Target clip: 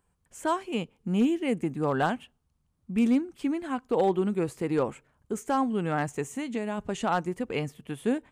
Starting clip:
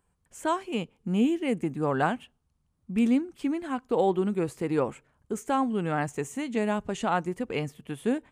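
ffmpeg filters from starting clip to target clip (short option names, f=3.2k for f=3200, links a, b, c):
-filter_complex "[0:a]asplit=3[a][b][c];[a]afade=t=out:st=6.24:d=0.02[d];[b]acompressor=threshold=-27dB:ratio=6,afade=t=in:st=6.24:d=0.02,afade=t=out:st=6.77:d=0.02[e];[c]afade=t=in:st=6.77:d=0.02[f];[d][e][f]amix=inputs=3:normalize=0,volume=16.5dB,asoftclip=hard,volume=-16.5dB"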